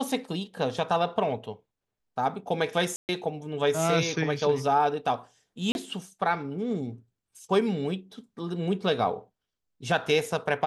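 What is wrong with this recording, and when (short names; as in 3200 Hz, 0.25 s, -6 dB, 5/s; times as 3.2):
2.96–3.09 gap 0.129 s
5.72–5.75 gap 31 ms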